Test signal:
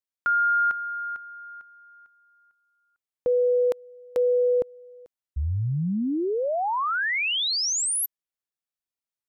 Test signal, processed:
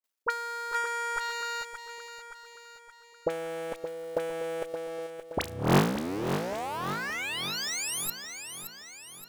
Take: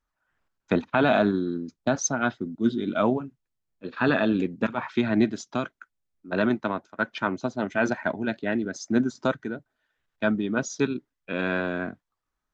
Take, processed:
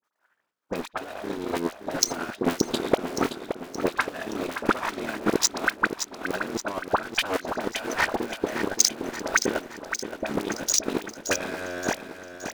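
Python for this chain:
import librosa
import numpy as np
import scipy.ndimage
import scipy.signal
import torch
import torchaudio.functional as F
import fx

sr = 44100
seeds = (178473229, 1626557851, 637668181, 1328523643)

p1 = fx.cycle_switch(x, sr, every=3, mode='muted')
p2 = scipy.signal.sosfilt(scipy.signal.butter(2, 330.0, 'highpass', fs=sr, output='sos'), p1)
p3 = fx.fuzz(p2, sr, gain_db=34.0, gate_db=-40.0)
p4 = p2 + F.gain(torch.from_numpy(p3), -5.0).numpy()
p5 = fx.over_compress(p4, sr, threshold_db=-29.0, ratio=-1.0)
p6 = fx.dispersion(p5, sr, late='highs', ms=41.0, hz=1300.0)
p7 = fx.transient(p6, sr, attack_db=11, sustain_db=-5)
p8 = p7 + fx.echo_feedback(p7, sr, ms=572, feedback_pct=52, wet_db=-9.0, dry=0)
y = F.gain(torch.from_numpy(p8), -4.0).numpy()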